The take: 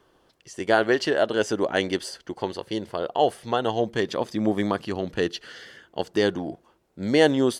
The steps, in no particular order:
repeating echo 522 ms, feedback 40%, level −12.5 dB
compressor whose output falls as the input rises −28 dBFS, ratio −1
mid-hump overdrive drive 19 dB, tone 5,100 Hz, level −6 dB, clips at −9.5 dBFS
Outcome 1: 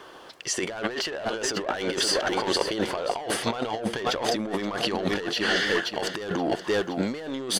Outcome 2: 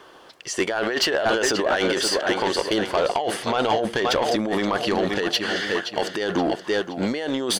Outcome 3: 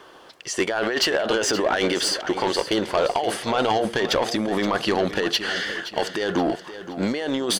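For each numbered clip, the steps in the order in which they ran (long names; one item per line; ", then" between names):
mid-hump overdrive, then repeating echo, then compressor whose output falls as the input rises
repeating echo, then compressor whose output falls as the input rises, then mid-hump overdrive
compressor whose output falls as the input rises, then mid-hump overdrive, then repeating echo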